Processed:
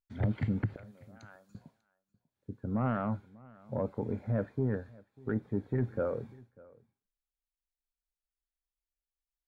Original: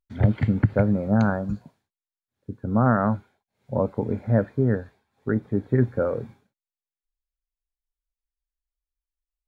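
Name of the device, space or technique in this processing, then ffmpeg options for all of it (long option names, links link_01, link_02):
soft clipper into limiter: -filter_complex "[0:a]asoftclip=type=tanh:threshold=-9dB,alimiter=limit=-14.5dB:level=0:latency=1:release=19,asettb=1/sr,asplit=3[link_01][link_02][link_03];[link_01]atrim=end=0.764[link_04];[link_02]atrim=start=0.76:end=1.55,asetpts=PTS-STARTPTS,afade=type=in:duration=0.004:curve=qsin,afade=type=out:start_time=0.786:duration=0.004:curve=qsin,aderivative[link_05];[link_03]atrim=start=1.546[link_06];[link_04][link_05]acrossfade=duration=0.004:curve1=hsin:curve2=qsin[link_07];[link_07][link_06]acrossfade=duration=0.004:curve1=qsin:curve2=hsin,aecho=1:1:594:0.0668,volume=-7.5dB"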